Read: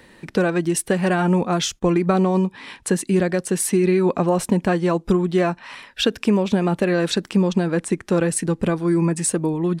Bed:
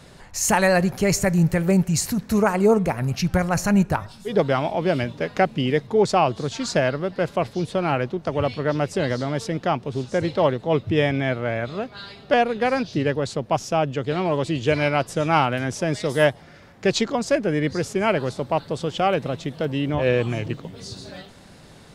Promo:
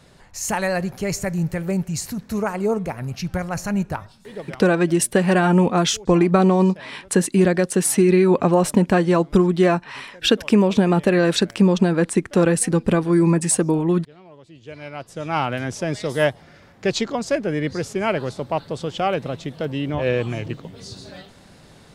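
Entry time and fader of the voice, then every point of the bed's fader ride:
4.25 s, +2.5 dB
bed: 4.02 s -4.5 dB
4.73 s -23.5 dB
14.42 s -23.5 dB
15.51 s -1 dB

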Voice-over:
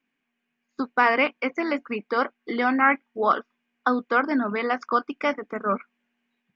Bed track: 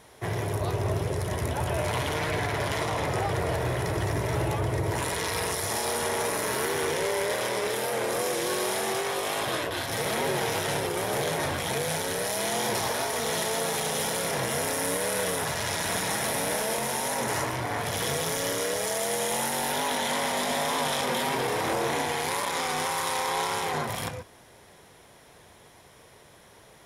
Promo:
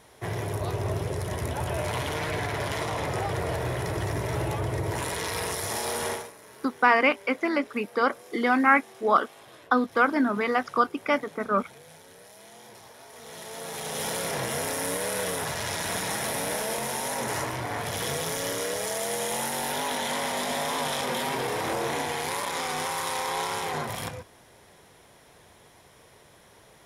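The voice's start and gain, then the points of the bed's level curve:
5.85 s, 0.0 dB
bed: 6.12 s -1.5 dB
6.34 s -21 dB
12.96 s -21 dB
14.08 s -1.5 dB

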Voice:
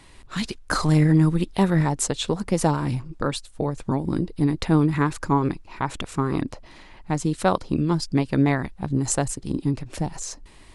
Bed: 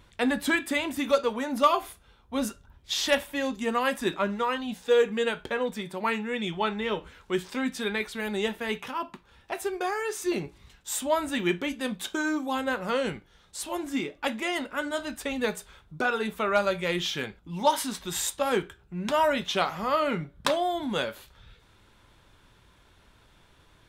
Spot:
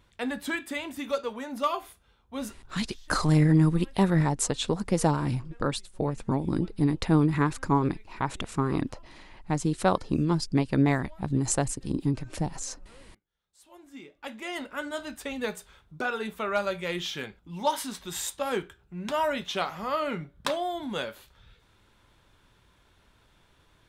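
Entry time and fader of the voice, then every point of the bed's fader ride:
2.40 s, -3.0 dB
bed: 2.70 s -6 dB
2.98 s -30 dB
13.22 s -30 dB
14.63 s -3.5 dB

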